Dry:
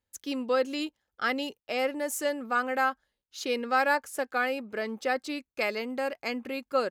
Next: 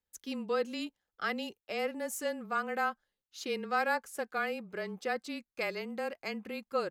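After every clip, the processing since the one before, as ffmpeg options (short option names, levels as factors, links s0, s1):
-af "afreqshift=-24,volume=0.531"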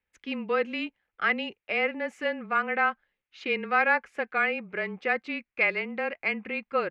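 -af "lowpass=f=2300:t=q:w=3.3,volume=1.58"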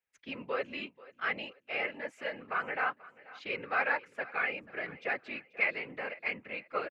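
-af "afftfilt=real='hypot(re,im)*cos(2*PI*random(0))':imag='hypot(re,im)*sin(2*PI*random(1))':win_size=512:overlap=0.75,lowshelf=f=270:g=-10.5,aecho=1:1:486|972|1458:0.1|0.036|0.013"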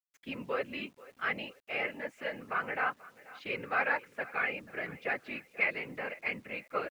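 -af "bass=f=250:g=5,treble=f=4000:g=-3,acrusher=bits=10:mix=0:aa=0.000001"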